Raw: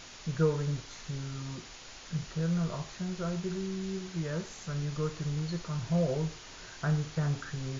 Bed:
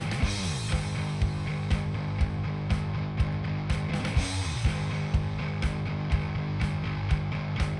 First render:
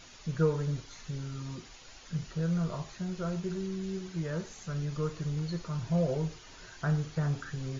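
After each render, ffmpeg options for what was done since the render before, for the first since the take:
-af "afftdn=nr=7:nf=-49"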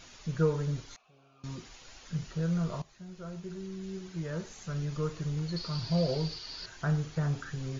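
-filter_complex "[0:a]asettb=1/sr,asplit=3[s0][s1][s2];[s0]atrim=end=0.964[s3];[s1]atrim=start=0.96:end=1.44,asetpts=PTS-STARTPTS,afade=t=in:d=0.004:c=qsin,afade=t=out:st=0.476:d=0.004:c=qsin,asplit=3[s4][s5][s6];[s4]bandpass=f=730:t=q:w=8,volume=1[s7];[s5]bandpass=f=1090:t=q:w=8,volume=0.501[s8];[s6]bandpass=f=2440:t=q:w=8,volume=0.355[s9];[s7][s8][s9]amix=inputs=3:normalize=0[s10];[s2]atrim=start=1.436[s11];[s3][s10]acrossfade=d=0.004:c1=hsin:c2=qsin[s12];[s12][s11]acrossfade=d=0.004:c1=qsin:c2=hsin,asettb=1/sr,asplit=3[s13][s14][s15];[s13]atrim=end=5.564[s16];[s14]atrim=start=5.56:end=6.66,asetpts=PTS-STARTPTS,afade=t=in:d=0.004:c=qsin,afade=t=out:st=1.096:d=0.004:c=qsin,lowpass=f=4600:t=q:w=11[s17];[s15]atrim=start=6.656[s18];[s16][s17]acrossfade=d=0.004:c1=hsin:c2=qsin[s19];[s19][s18]acrossfade=d=0.004:c1=qsin:c2=hsin,asplit=2[s20][s21];[s20]atrim=end=2.82,asetpts=PTS-STARTPTS,afade=t=out:st=2.816:d=0.004:c=hsin:silence=0.199526[s22];[s21]atrim=start=2.82,asetpts=PTS-STARTPTS,afade=t=in:d=1.89:silence=0.199526[s23];[s22][s23]concat=n=2:v=0:a=1"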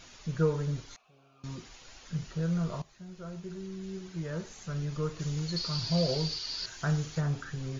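-filter_complex "[0:a]asettb=1/sr,asplit=3[s0][s1][s2];[s0]atrim=end=5.194[s3];[s1]atrim=start=5.19:end=7.21,asetpts=PTS-STARTPTS,afade=t=in:d=0.004:c=qsin,afade=t=out:st=2.016:d=0.004:c=qsin,highshelf=f=3500:g=10[s4];[s2]atrim=start=7.206[s5];[s3][s4]acrossfade=d=0.004:c1=hsin:c2=qsin[s6];[s6][s5]acrossfade=d=0.004:c1=qsin:c2=hsin"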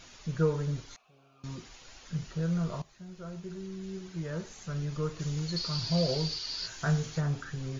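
-filter_complex "[0:a]asettb=1/sr,asplit=3[s0][s1][s2];[s0]atrim=end=6.634[s3];[s1]atrim=start=6.63:end=7.17,asetpts=PTS-STARTPTS,afade=t=in:d=0.004:c=qsin,afade=t=out:st=0.536:d=0.004:c=qsin,asplit=2[s4][s5];[s5]adelay=18,volume=0.562[s6];[s4][s6]amix=inputs=2:normalize=0,atrim=end_sample=23814[s7];[s2]atrim=start=7.166[s8];[s3][s7]acrossfade=d=0.004:c1=hsin:c2=qsin[s9];[s9][s8]acrossfade=d=0.004:c1=qsin:c2=hsin"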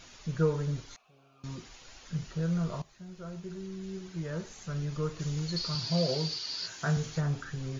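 -filter_complex "[0:a]asettb=1/sr,asplit=3[s0][s1][s2];[s0]atrim=end=5.754[s3];[s1]atrim=start=5.75:end=6.97,asetpts=PTS-STARTPTS,afade=t=in:d=0.004:c=qsin,afade=t=out:st=1.216:d=0.004:c=qsin,highpass=120[s4];[s2]atrim=start=6.966[s5];[s3][s4]acrossfade=d=0.004:c1=hsin:c2=qsin[s6];[s6][s5]acrossfade=d=0.004:c1=qsin:c2=hsin"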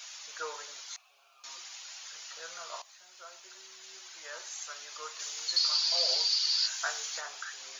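-af "highpass=f=700:w=0.5412,highpass=f=700:w=1.3066,highshelf=f=2700:g=11.5"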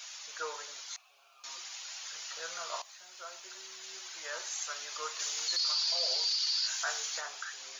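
-af "dynaudnorm=f=410:g=9:m=1.5,alimiter=limit=0.0708:level=0:latency=1:release=21"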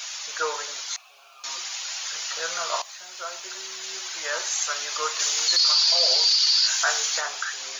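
-af "volume=3.76"

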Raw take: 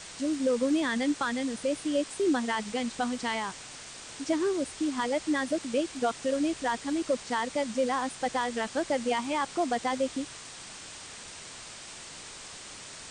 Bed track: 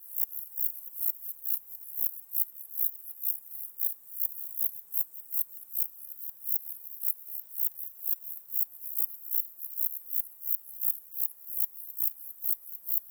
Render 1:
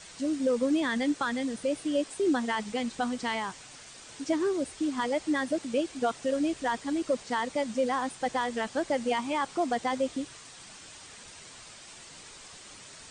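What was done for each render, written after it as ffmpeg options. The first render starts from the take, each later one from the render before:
-af "afftdn=nr=6:nf=-45"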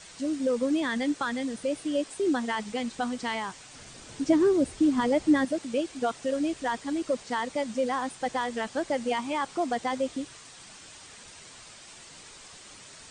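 -filter_complex "[0:a]asettb=1/sr,asplit=3[s0][s1][s2];[s0]atrim=end=3.754[s3];[s1]atrim=start=3.75:end=5.45,asetpts=PTS-STARTPTS,afade=t=in:d=0.004:c=qsin,afade=t=out:st=1.696:d=0.004:c=qsin,lowshelf=f=430:g=11[s4];[s2]atrim=start=5.446[s5];[s3][s4]acrossfade=d=0.004:c1=hsin:c2=qsin[s6];[s6][s5]acrossfade=d=0.004:c1=qsin:c2=hsin"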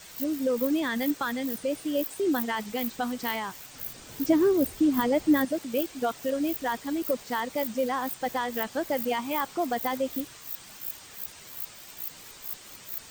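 -filter_complex "[1:a]volume=0.398[s0];[0:a][s0]amix=inputs=2:normalize=0"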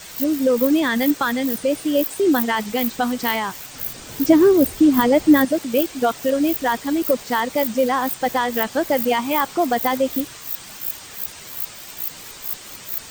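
-af "volume=2.82"

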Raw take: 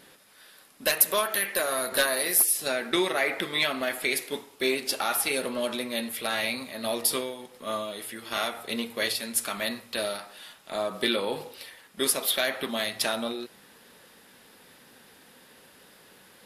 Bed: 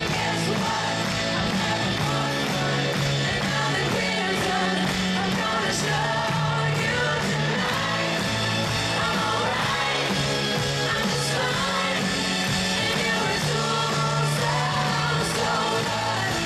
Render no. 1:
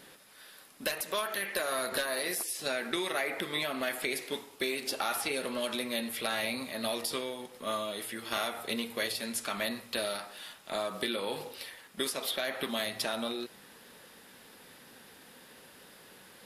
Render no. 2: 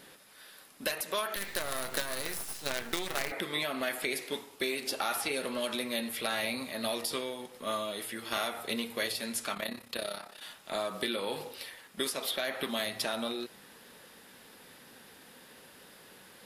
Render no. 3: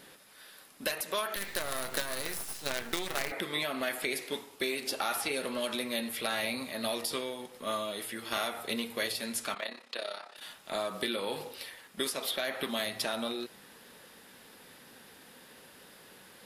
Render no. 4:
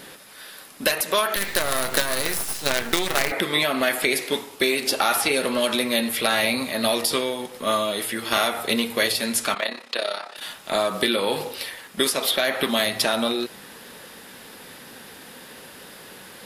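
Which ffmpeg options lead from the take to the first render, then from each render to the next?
-filter_complex "[0:a]alimiter=limit=0.178:level=0:latency=1:release=277,acrossover=split=1200|7800[s0][s1][s2];[s0]acompressor=threshold=0.0224:ratio=4[s3];[s1]acompressor=threshold=0.0224:ratio=4[s4];[s2]acompressor=threshold=0.00794:ratio=4[s5];[s3][s4][s5]amix=inputs=3:normalize=0"
-filter_complex "[0:a]asettb=1/sr,asplit=3[s0][s1][s2];[s0]atrim=end=1.364[s3];[s1]atrim=start=1.36:end=3.32,asetpts=PTS-STARTPTS,afade=t=in:d=0.004:c=qsin,afade=t=out:st=1.956:d=0.004:c=qsin,acrusher=bits=5:dc=4:mix=0:aa=0.000001[s4];[s2]atrim=start=3.316[s5];[s3][s4]acrossfade=d=0.004:c1=hsin:c2=qsin[s6];[s6][s5]acrossfade=d=0.004:c1=qsin:c2=hsin,asettb=1/sr,asplit=3[s7][s8][s9];[s7]atrim=end=9.544[s10];[s8]atrim=start=9.54:end=10.42,asetpts=PTS-STARTPTS,afade=t=in:d=0.004:c=qsin,afade=t=out:st=0.876:d=0.004:c=qsin,tremolo=f=33:d=0.788[s11];[s9]atrim=start=10.416[s12];[s10][s11]acrossfade=d=0.004:c1=hsin:c2=qsin[s13];[s13][s12]acrossfade=d=0.004:c1=qsin:c2=hsin"
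-filter_complex "[0:a]asettb=1/sr,asplit=3[s0][s1][s2];[s0]atrim=end=9.544[s3];[s1]atrim=start=9.54:end=10.36,asetpts=PTS-STARTPTS,afade=t=in:d=0.004:c=qsin,afade=t=out:st=0.816:d=0.004:c=qsin,highpass=420,lowpass=5900[s4];[s2]atrim=start=10.356[s5];[s3][s4]acrossfade=d=0.004:c1=hsin:c2=qsin[s6];[s6][s5]acrossfade=d=0.004:c1=qsin:c2=hsin"
-af "volume=3.76"

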